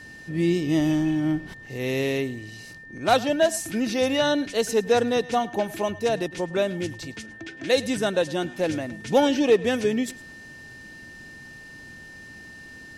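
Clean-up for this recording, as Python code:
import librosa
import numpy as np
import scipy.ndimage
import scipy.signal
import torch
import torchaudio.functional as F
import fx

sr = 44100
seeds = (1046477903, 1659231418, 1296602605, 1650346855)

y = fx.fix_declip(x, sr, threshold_db=-9.5)
y = fx.notch(y, sr, hz=1800.0, q=30.0)
y = fx.fix_interpolate(y, sr, at_s=(1.66,), length_ms=3.5)
y = fx.fix_echo_inverse(y, sr, delay_ms=106, level_db=-20.0)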